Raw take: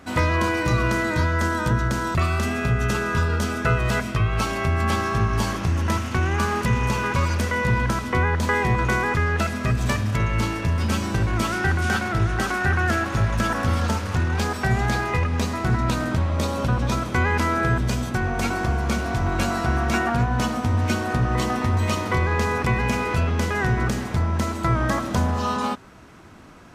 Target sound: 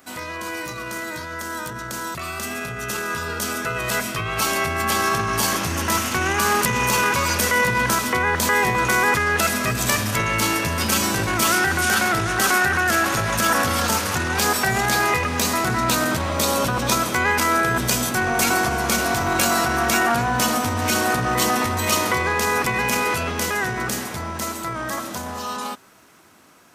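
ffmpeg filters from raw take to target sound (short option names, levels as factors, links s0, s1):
-af "highpass=f=57:p=1,alimiter=limit=0.141:level=0:latency=1:release=11,dynaudnorm=f=730:g=11:m=3.98,aemphasis=mode=production:type=bsi,volume=0.596"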